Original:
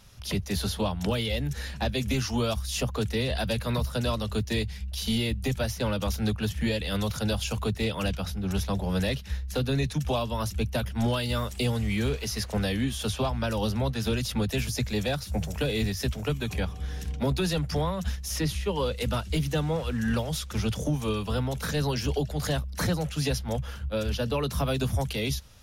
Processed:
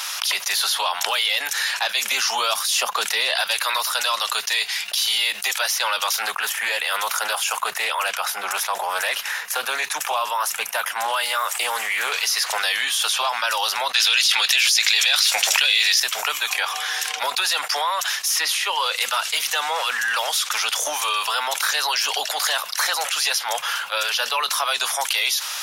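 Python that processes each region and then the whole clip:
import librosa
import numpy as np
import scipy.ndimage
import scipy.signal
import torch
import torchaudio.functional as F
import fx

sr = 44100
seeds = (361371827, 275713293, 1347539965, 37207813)

y = fx.chain(x, sr, fx.steep_highpass(hz=170.0, slope=72),
    fx.low_shelf(hz=410.0, db=11.5), at=(2.02, 3.41))
y = fx.chain(y, sr, fx.peak_eq(hz=4100.0, db=-11.0, octaves=1.4),
    fx.doppler_dist(depth_ms=0.15), at=(6.22, 12.12))
y = fx.chain(y, sr, fx.weighting(curve='D'),
    fx.env_flatten(amount_pct=100), at=(13.94, 16.0))
y = fx.chain(y, sr, fx.peak_eq(hz=14000.0, db=-12.5, octaves=0.26),
    fx.notch(hz=2700.0, q=25.0), at=(24.52, 25.01))
y = scipy.signal.sosfilt(scipy.signal.butter(4, 900.0, 'highpass', fs=sr, output='sos'), y)
y = fx.env_flatten(y, sr, amount_pct=70)
y = y * librosa.db_to_amplitude(3.5)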